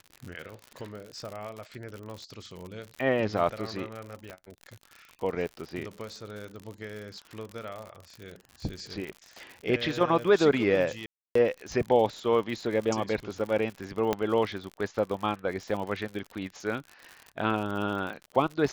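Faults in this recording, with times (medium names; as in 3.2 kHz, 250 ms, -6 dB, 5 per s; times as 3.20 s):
crackle 70 per s -35 dBFS
4.30 s: pop -26 dBFS
11.06–11.35 s: dropout 294 ms
14.13 s: pop -12 dBFS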